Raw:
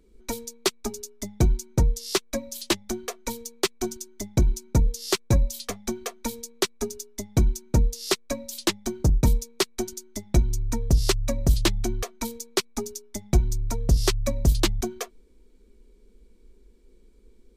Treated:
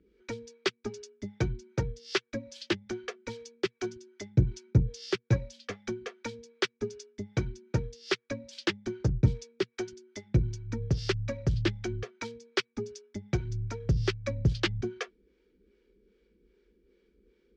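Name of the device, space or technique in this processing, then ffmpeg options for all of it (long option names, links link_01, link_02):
guitar amplifier with harmonic tremolo: -filter_complex "[0:a]acrossover=split=420[link_01][link_02];[link_01]aeval=exprs='val(0)*(1-0.7/2+0.7/2*cos(2*PI*2.5*n/s))':channel_layout=same[link_03];[link_02]aeval=exprs='val(0)*(1-0.7/2-0.7/2*cos(2*PI*2.5*n/s))':channel_layout=same[link_04];[link_03][link_04]amix=inputs=2:normalize=0,asoftclip=type=tanh:threshold=-14dB,highpass=91,equalizer=frequency=120:width_type=q:width=4:gain=6,equalizer=frequency=240:width_type=q:width=4:gain=-8,equalizer=frequency=680:width_type=q:width=4:gain=-10,equalizer=frequency=1000:width_type=q:width=4:gain=-10,equalizer=frequency=1600:width_type=q:width=4:gain=4,equalizer=frequency=4000:width_type=q:width=4:gain=-7,lowpass=frequency=4500:width=0.5412,lowpass=frequency=4500:width=1.3066,volume=2dB"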